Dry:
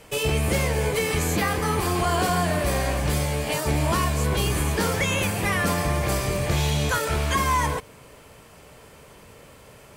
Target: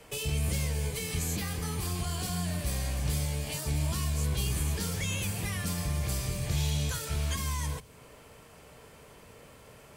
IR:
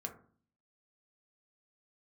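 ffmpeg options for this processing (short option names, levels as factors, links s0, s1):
-filter_complex "[0:a]acrossover=split=190|3000[s0][s1][s2];[s1]acompressor=threshold=0.0141:ratio=6[s3];[s0][s3][s2]amix=inputs=3:normalize=0,aeval=exprs='0.2*(cos(1*acos(clip(val(0)/0.2,-1,1)))-cos(1*PI/2))+0.00141*(cos(2*acos(clip(val(0)/0.2,-1,1)))-cos(2*PI/2))':c=same,asplit=2[s4][s5];[1:a]atrim=start_sample=2205[s6];[s5][s6]afir=irnorm=-1:irlink=0,volume=0.335[s7];[s4][s7]amix=inputs=2:normalize=0,volume=0.473"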